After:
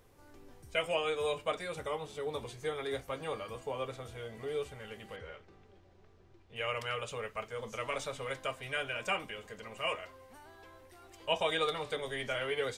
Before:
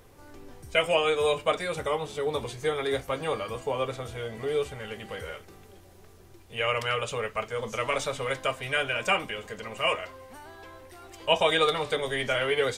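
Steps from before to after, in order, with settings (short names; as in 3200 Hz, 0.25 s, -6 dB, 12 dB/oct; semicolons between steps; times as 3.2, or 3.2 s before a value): 5.16–6.56 air absorption 150 m; gain -8.5 dB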